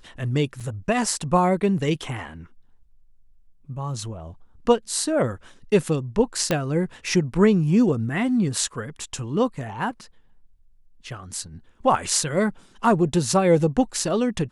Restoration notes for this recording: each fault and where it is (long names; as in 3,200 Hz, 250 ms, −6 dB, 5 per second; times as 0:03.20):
0:00.60–0:00.61: drop-out 5.7 ms
0:06.51: click −7 dBFS